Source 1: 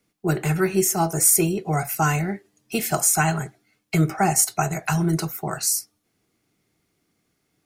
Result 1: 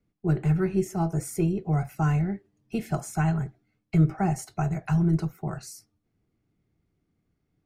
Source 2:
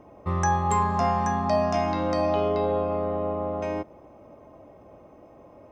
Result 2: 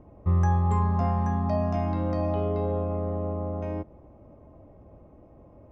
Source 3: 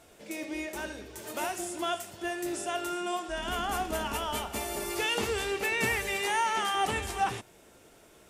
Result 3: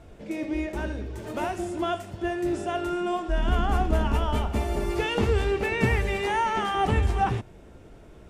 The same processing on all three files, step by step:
RIAA equalisation playback
loudness normalisation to −27 LKFS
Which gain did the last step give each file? −9.5, −7.5, +3.0 decibels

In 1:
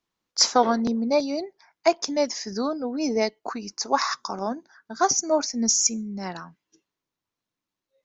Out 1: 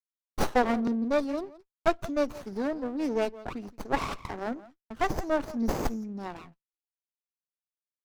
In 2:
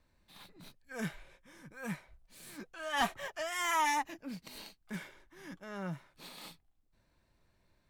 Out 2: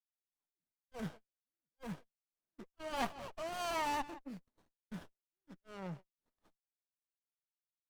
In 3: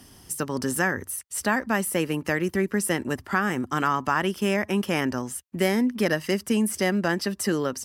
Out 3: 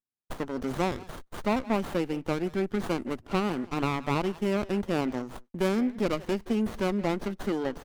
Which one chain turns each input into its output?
high-pass filter 120 Hz 12 dB per octave
far-end echo of a speakerphone 170 ms, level −16 dB
noise reduction from a noise print of the clip's start 7 dB
noise gate −45 dBFS, range −42 dB
windowed peak hold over 17 samples
level −3.5 dB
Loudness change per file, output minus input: −6.5, −5.0, −4.5 LU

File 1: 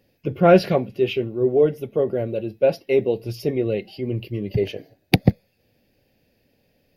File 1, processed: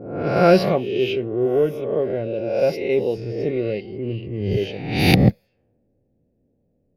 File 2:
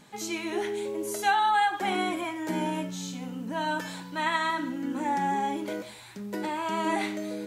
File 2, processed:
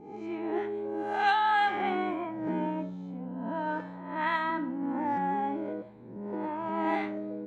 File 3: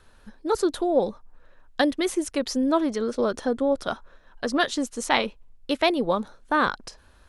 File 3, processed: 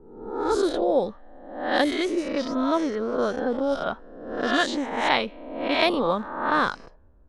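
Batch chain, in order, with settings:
peak hold with a rise ahead of every peak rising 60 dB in 0.99 s
low-pass that shuts in the quiet parts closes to 430 Hz, open at −14 dBFS
level −2.5 dB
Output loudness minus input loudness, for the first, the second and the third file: +1.0, −2.0, +0.5 LU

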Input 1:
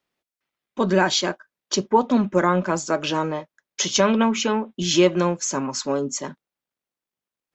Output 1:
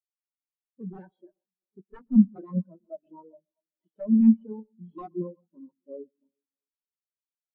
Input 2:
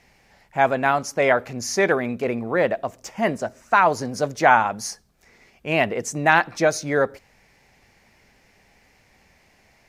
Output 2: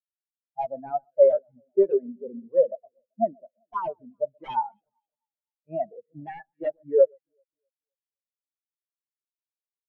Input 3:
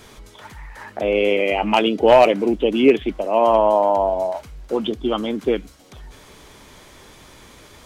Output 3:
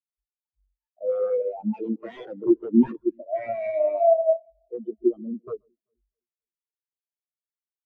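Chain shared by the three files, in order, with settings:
variable-slope delta modulation 32 kbit/s
wrap-around overflow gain 11.5 dB
on a send: delay that swaps between a low-pass and a high-pass 129 ms, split 1,600 Hz, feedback 82%, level −9.5 dB
on the sum: every bin expanded away from the loudest bin 4 to 1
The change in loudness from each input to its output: −2.0, −4.5, −6.5 LU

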